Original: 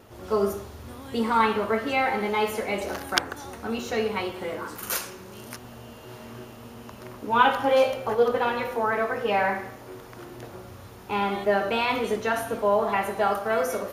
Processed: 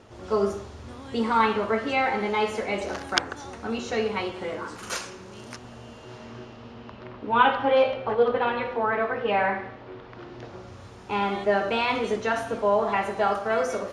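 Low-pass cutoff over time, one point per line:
low-pass 24 dB/octave
5.95 s 7.8 kHz
7.07 s 3.9 kHz
10.06 s 3.9 kHz
10.84 s 7.9 kHz

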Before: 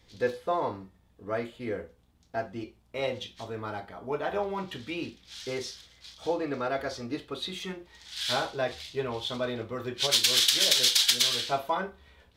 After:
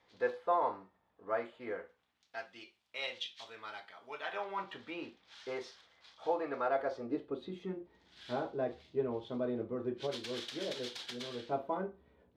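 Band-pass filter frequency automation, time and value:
band-pass filter, Q 1
1.68 s 980 Hz
2.36 s 3.1 kHz
4.19 s 3.1 kHz
4.78 s 930 Hz
6.63 s 930 Hz
7.40 s 300 Hz

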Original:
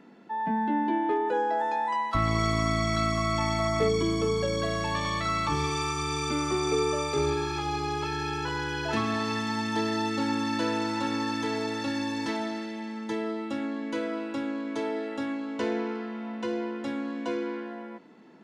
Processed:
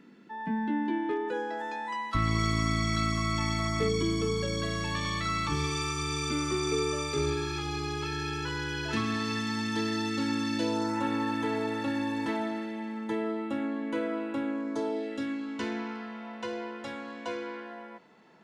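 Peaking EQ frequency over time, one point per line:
peaking EQ -12 dB 0.97 oct
10.46 s 720 Hz
11.06 s 5.4 kHz
14.49 s 5.4 kHz
15.21 s 840 Hz
16.29 s 280 Hz

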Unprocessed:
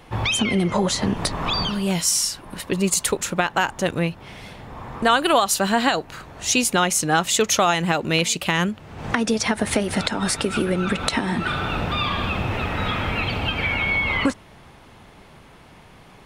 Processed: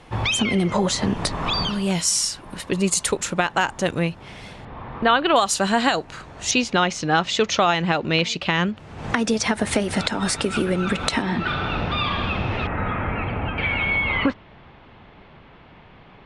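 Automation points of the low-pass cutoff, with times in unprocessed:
low-pass 24 dB/octave
10 kHz
from 4.65 s 3.8 kHz
from 5.36 s 9.1 kHz
from 6.51 s 5.2 kHz
from 8.77 s 10 kHz
from 11.22 s 5.3 kHz
from 12.67 s 2.1 kHz
from 13.58 s 3.6 kHz

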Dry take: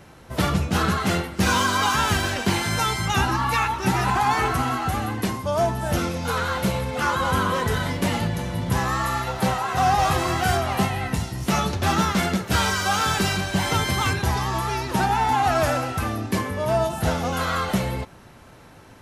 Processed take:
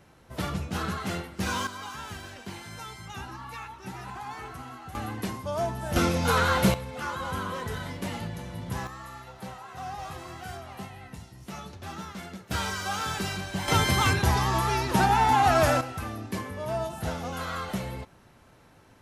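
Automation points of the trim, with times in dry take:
-9.5 dB
from 1.67 s -18 dB
from 4.95 s -7.5 dB
from 5.96 s +1.5 dB
from 6.74 s -10.5 dB
from 8.87 s -18 dB
from 12.51 s -9 dB
from 13.68 s -0.5 dB
from 15.81 s -9 dB

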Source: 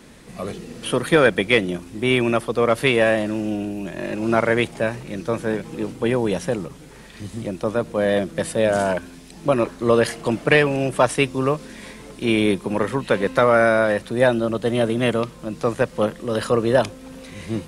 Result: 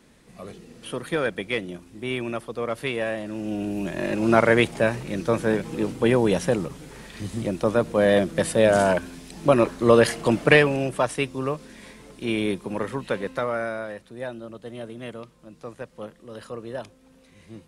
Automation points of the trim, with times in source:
3.22 s -10 dB
3.78 s +1 dB
10.47 s +1 dB
11.06 s -6.5 dB
13.05 s -6.5 dB
14.02 s -16.5 dB

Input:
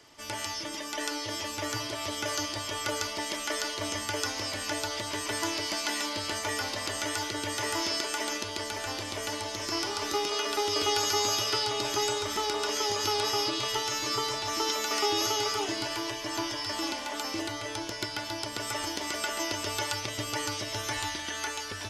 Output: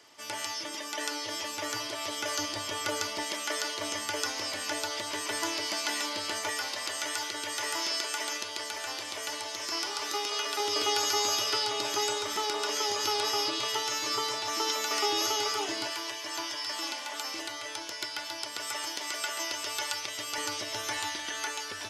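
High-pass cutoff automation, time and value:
high-pass 6 dB/octave
390 Hz
from 2.39 s 150 Hz
from 3.23 s 340 Hz
from 6.50 s 800 Hz
from 10.60 s 370 Hz
from 15.90 s 990 Hz
from 20.38 s 380 Hz

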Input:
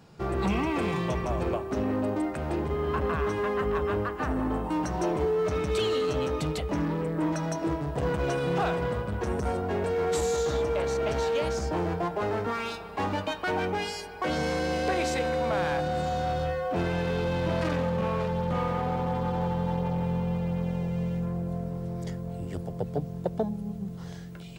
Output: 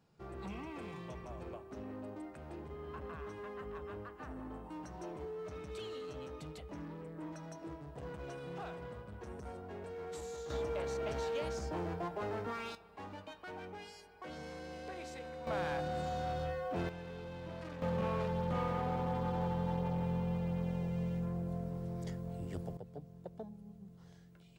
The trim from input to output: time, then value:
-17.5 dB
from 10.50 s -10 dB
from 12.75 s -18.5 dB
from 15.47 s -9 dB
from 16.89 s -18 dB
from 17.82 s -7 dB
from 22.77 s -18 dB

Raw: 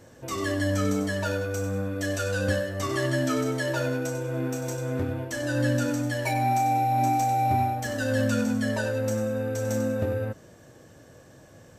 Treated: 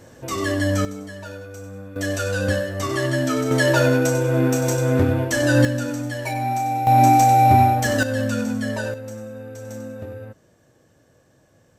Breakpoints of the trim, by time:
+5 dB
from 0.85 s -7.5 dB
from 1.96 s +4 dB
from 3.51 s +10.5 dB
from 5.65 s +0.5 dB
from 6.87 s +10 dB
from 8.03 s +1.5 dB
from 8.94 s -7 dB

